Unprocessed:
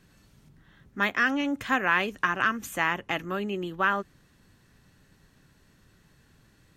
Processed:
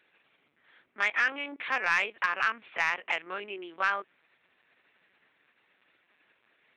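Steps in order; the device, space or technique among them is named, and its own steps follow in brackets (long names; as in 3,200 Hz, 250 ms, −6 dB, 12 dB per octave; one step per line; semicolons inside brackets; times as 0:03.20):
talking toy (linear-prediction vocoder at 8 kHz pitch kept; high-pass filter 500 Hz 12 dB per octave; parametric band 2,300 Hz +9 dB 0.44 octaves; soft clipping −11.5 dBFS, distortion −17 dB)
level −2.5 dB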